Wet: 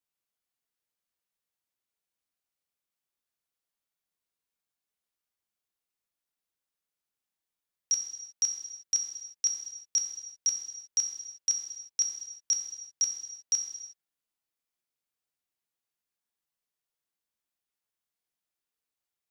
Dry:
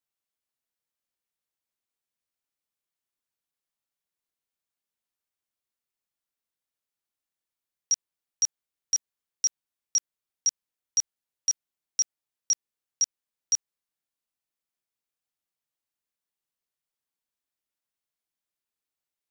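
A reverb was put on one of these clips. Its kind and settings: gated-style reverb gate 390 ms falling, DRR 3 dB; trim -2 dB

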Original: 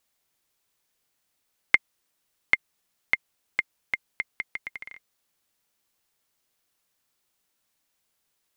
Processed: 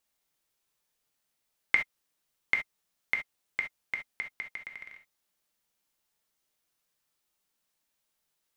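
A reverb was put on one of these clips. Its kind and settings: gated-style reverb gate 90 ms flat, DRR 3.5 dB; trim -6 dB

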